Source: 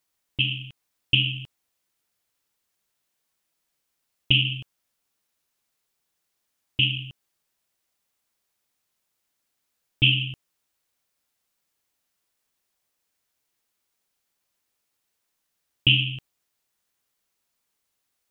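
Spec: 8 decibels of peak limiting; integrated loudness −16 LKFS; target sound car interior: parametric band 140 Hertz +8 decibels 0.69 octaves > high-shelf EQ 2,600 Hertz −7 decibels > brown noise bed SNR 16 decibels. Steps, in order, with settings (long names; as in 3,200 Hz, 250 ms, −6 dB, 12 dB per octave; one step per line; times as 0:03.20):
brickwall limiter −12 dBFS
parametric band 140 Hz +8 dB 0.69 octaves
high-shelf EQ 2,600 Hz −7 dB
brown noise bed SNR 16 dB
level +10.5 dB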